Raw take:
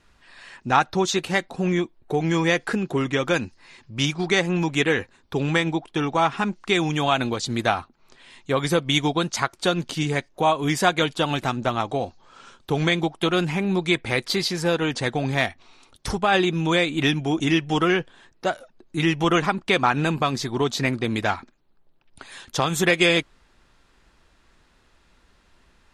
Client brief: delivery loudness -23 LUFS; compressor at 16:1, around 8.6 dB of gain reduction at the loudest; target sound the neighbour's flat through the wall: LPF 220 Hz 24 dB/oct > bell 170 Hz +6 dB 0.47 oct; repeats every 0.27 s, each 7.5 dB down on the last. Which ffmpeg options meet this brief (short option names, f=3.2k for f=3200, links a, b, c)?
-af "acompressor=threshold=-23dB:ratio=16,lowpass=f=220:w=0.5412,lowpass=f=220:w=1.3066,equalizer=f=170:t=o:w=0.47:g=6,aecho=1:1:270|540|810|1080|1350:0.422|0.177|0.0744|0.0312|0.0131,volume=8dB"